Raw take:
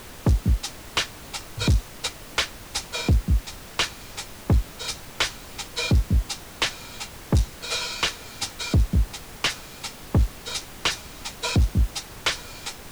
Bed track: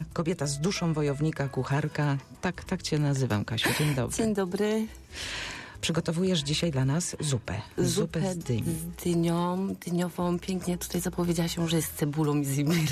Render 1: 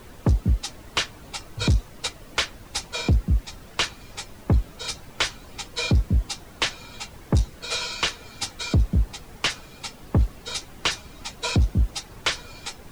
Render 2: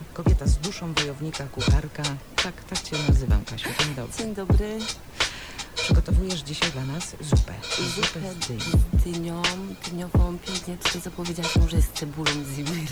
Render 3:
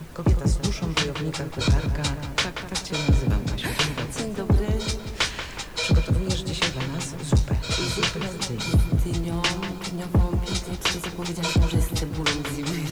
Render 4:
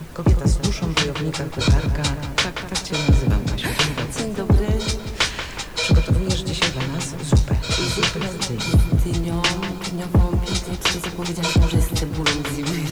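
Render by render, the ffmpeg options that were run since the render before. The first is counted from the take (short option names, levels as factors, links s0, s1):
-af "afftdn=nr=9:nf=-42"
-filter_complex "[1:a]volume=0.631[s0];[0:a][s0]amix=inputs=2:normalize=0"
-filter_complex "[0:a]asplit=2[s0][s1];[s1]adelay=25,volume=0.211[s2];[s0][s2]amix=inputs=2:normalize=0,asplit=2[s3][s4];[s4]adelay=184,lowpass=f=1700:p=1,volume=0.501,asplit=2[s5][s6];[s6]adelay=184,lowpass=f=1700:p=1,volume=0.54,asplit=2[s7][s8];[s8]adelay=184,lowpass=f=1700:p=1,volume=0.54,asplit=2[s9][s10];[s10]adelay=184,lowpass=f=1700:p=1,volume=0.54,asplit=2[s11][s12];[s12]adelay=184,lowpass=f=1700:p=1,volume=0.54,asplit=2[s13][s14];[s14]adelay=184,lowpass=f=1700:p=1,volume=0.54,asplit=2[s15][s16];[s16]adelay=184,lowpass=f=1700:p=1,volume=0.54[s17];[s3][s5][s7][s9][s11][s13][s15][s17]amix=inputs=8:normalize=0"
-af "volume=1.58"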